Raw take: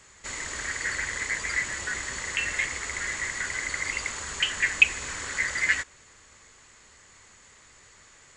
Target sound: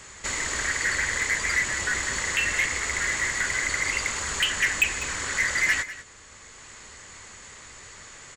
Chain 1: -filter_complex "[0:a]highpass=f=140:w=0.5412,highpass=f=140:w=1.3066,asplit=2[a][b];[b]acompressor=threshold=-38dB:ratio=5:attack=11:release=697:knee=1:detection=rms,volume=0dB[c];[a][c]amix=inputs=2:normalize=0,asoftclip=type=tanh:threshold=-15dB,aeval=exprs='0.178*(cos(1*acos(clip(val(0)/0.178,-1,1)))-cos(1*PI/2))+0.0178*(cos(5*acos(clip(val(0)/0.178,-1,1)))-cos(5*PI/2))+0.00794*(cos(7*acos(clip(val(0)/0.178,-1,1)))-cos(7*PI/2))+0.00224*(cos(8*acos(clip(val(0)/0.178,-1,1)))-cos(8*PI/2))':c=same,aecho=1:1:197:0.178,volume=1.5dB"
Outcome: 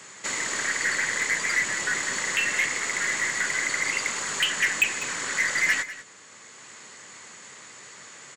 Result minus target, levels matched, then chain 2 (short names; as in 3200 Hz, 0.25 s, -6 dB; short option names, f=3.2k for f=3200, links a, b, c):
125 Hz band -8.0 dB
-filter_complex "[0:a]asplit=2[a][b];[b]acompressor=threshold=-38dB:ratio=5:attack=11:release=697:knee=1:detection=rms,volume=0dB[c];[a][c]amix=inputs=2:normalize=0,asoftclip=type=tanh:threshold=-15dB,aeval=exprs='0.178*(cos(1*acos(clip(val(0)/0.178,-1,1)))-cos(1*PI/2))+0.0178*(cos(5*acos(clip(val(0)/0.178,-1,1)))-cos(5*PI/2))+0.00794*(cos(7*acos(clip(val(0)/0.178,-1,1)))-cos(7*PI/2))+0.00224*(cos(8*acos(clip(val(0)/0.178,-1,1)))-cos(8*PI/2))':c=same,aecho=1:1:197:0.178,volume=1.5dB"